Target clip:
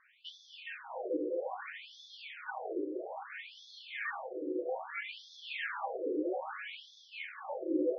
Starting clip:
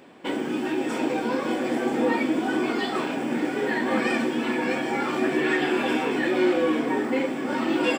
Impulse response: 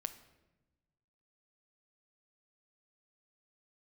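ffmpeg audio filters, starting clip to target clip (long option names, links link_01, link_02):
-filter_complex "[0:a]asplit=3[link_01][link_02][link_03];[link_01]afade=type=out:start_time=2.89:duration=0.02[link_04];[link_02]asubboost=boost=5.5:cutoff=140,afade=type=in:start_time=2.89:duration=0.02,afade=type=out:start_time=4.31:duration=0.02[link_05];[link_03]afade=type=in:start_time=4.31:duration=0.02[link_06];[link_04][link_05][link_06]amix=inputs=3:normalize=0[link_07];[1:a]atrim=start_sample=2205,asetrate=79380,aresample=44100[link_08];[link_07][link_08]afir=irnorm=-1:irlink=0,afftfilt=real='re*between(b*sr/1024,400*pow(4700/400,0.5+0.5*sin(2*PI*0.61*pts/sr))/1.41,400*pow(4700/400,0.5+0.5*sin(2*PI*0.61*pts/sr))*1.41)':imag='im*between(b*sr/1024,400*pow(4700/400,0.5+0.5*sin(2*PI*0.61*pts/sr))/1.41,400*pow(4700/400,0.5+0.5*sin(2*PI*0.61*pts/sr))*1.41)':win_size=1024:overlap=0.75,volume=1dB"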